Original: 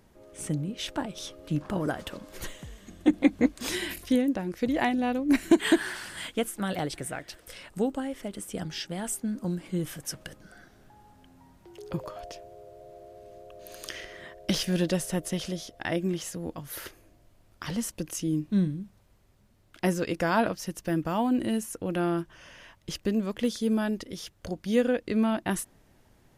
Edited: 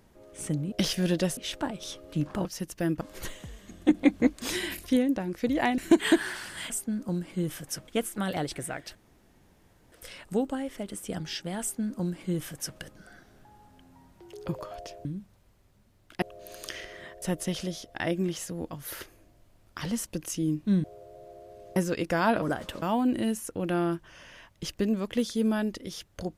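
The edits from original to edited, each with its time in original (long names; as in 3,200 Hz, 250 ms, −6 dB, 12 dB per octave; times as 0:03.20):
0:01.80–0:02.20: swap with 0:20.52–0:21.08
0:04.97–0:05.38: remove
0:07.37: splice in room tone 0.97 s
0:09.06–0:10.24: duplicate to 0:06.30
0:12.50–0:13.42: swap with 0:18.69–0:19.86
0:14.42–0:15.07: move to 0:00.72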